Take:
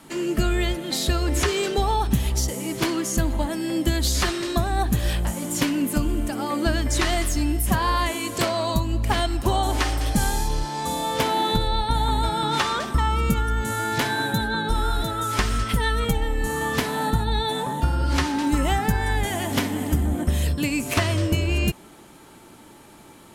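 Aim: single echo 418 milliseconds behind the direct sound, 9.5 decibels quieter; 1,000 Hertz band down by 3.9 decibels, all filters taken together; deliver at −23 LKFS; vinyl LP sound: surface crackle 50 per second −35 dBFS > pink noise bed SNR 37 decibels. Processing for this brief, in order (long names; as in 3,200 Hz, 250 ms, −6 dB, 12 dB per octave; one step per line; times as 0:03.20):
parametric band 1,000 Hz −5 dB
single-tap delay 418 ms −9.5 dB
surface crackle 50 per second −35 dBFS
pink noise bed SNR 37 dB
level +1 dB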